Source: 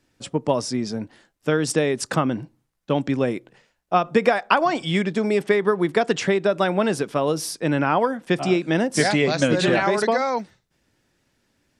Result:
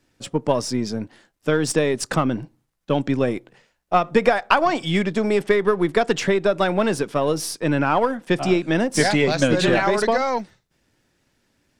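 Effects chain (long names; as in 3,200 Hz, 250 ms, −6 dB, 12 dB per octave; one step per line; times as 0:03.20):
gain on one half-wave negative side −3 dB
level +2.5 dB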